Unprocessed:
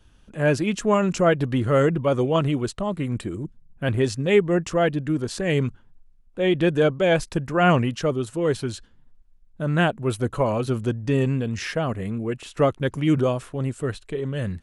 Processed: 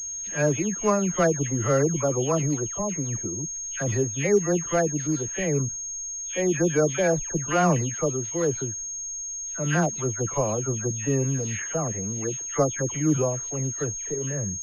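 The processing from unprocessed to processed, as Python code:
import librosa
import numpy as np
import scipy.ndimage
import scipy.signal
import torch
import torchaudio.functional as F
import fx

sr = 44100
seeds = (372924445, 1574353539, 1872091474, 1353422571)

y = fx.spec_delay(x, sr, highs='early', ms=308)
y = fx.pwm(y, sr, carrier_hz=6500.0)
y = y * 10.0 ** (-2.5 / 20.0)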